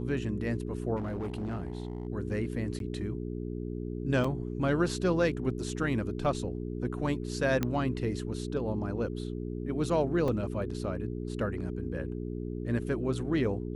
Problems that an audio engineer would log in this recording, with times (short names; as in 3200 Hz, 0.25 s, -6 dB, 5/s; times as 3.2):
hum 60 Hz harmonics 7 -36 dBFS
0.96–2.07 clipped -30.5 dBFS
2.79–2.8 gap 12 ms
4.24 gap 4.4 ms
7.63 pop -15 dBFS
10.28 gap 3.4 ms